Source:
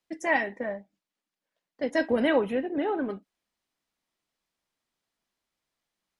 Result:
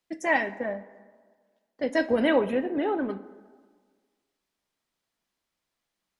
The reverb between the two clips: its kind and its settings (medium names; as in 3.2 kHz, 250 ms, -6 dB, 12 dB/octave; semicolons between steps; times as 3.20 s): plate-style reverb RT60 1.6 s, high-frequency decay 0.55×, DRR 14 dB; trim +1 dB